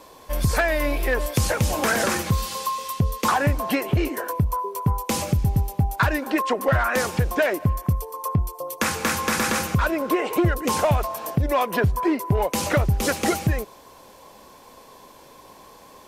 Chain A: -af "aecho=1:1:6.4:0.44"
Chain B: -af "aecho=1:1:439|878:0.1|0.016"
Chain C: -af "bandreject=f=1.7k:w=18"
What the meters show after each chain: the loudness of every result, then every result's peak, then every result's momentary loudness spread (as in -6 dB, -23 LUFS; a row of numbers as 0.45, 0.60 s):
-22.5, -23.0, -23.5 LUFS; -8.5, -10.5, -10.0 dBFS; 5, 5, 5 LU